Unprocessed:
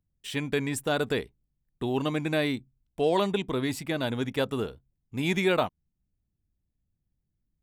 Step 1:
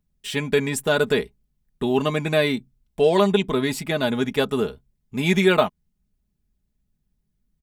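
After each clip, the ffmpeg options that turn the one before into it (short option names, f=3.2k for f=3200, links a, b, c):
-af "aecho=1:1:4.8:0.55,volume=5.5dB"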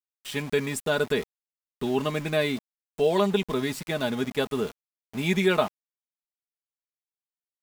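-af "aeval=exprs='val(0)*gte(abs(val(0)),0.0251)':c=same,volume=-5dB"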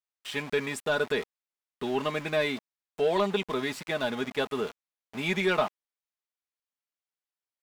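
-filter_complex "[0:a]asplit=2[a][b];[b]highpass=f=720:p=1,volume=12dB,asoftclip=type=tanh:threshold=-10dB[c];[a][c]amix=inputs=2:normalize=0,lowpass=f=3k:p=1,volume=-6dB,volume=-4.5dB"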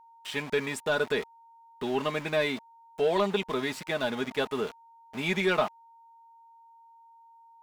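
-af "aeval=exprs='val(0)+0.00224*sin(2*PI*920*n/s)':c=same"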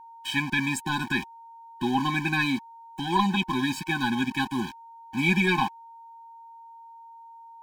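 -af "afftfilt=real='re*eq(mod(floor(b*sr/1024/370),2),0)':imag='im*eq(mod(floor(b*sr/1024/370),2),0)':win_size=1024:overlap=0.75,volume=8.5dB"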